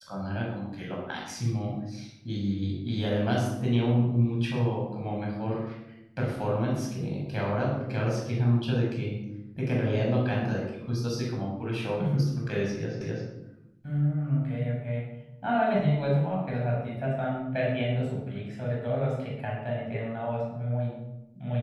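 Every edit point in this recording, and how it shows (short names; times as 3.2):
13.01 repeat of the last 0.26 s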